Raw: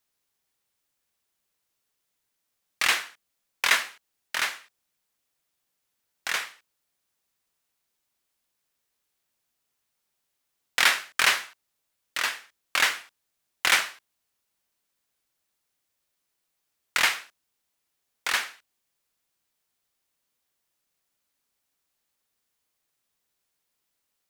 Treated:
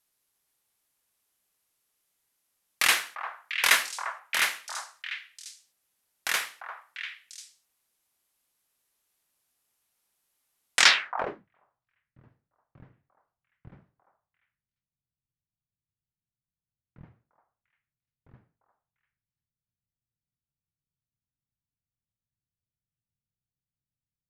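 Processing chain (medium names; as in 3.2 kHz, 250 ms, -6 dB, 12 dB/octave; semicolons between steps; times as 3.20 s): repeats whose band climbs or falls 347 ms, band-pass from 930 Hz, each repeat 1.4 oct, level -3.5 dB; low-pass sweep 12 kHz -> 130 Hz, 10.74–11.48 s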